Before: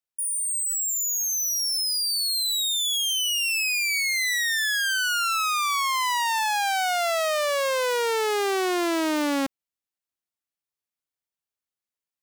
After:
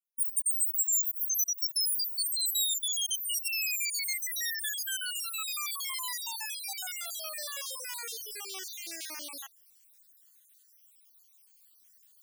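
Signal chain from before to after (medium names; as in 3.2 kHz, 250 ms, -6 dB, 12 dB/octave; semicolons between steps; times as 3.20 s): random holes in the spectrogram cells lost 60%; reverse; upward compressor, threshold -40 dBFS; reverse; differentiator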